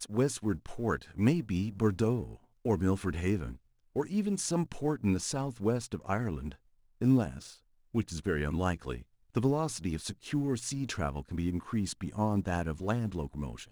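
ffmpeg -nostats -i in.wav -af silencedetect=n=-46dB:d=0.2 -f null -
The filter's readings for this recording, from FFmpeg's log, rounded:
silence_start: 2.36
silence_end: 2.65 | silence_duration: 0.29
silence_start: 3.56
silence_end: 3.96 | silence_duration: 0.39
silence_start: 6.55
silence_end: 7.01 | silence_duration: 0.46
silence_start: 7.56
silence_end: 7.94 | silence_duration: 0.38
silence_start: 9.02
silence_end: 9.35 | silence_duration: 0.32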